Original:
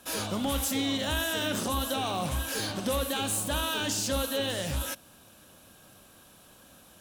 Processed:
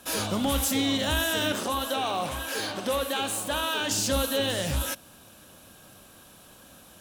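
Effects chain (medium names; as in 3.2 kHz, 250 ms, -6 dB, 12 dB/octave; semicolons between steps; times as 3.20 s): 1.52–3.91 s: tone controls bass -11 dB, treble -5 dB; trim +3.5 dB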